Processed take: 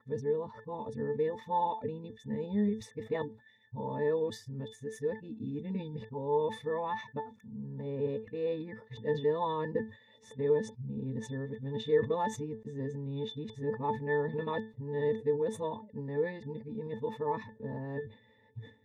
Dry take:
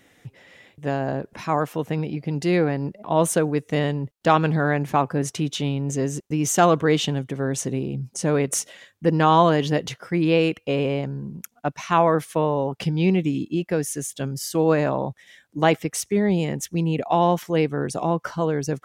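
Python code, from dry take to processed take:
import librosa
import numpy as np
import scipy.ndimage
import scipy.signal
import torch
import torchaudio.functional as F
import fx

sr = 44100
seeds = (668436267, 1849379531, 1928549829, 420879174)

y = x[::-1].copy()
y = fx.octave_resonator(y, sr, note='A', decay_s=0.12)
y = fx.sustainer(y, sr, db_per_s=150.0)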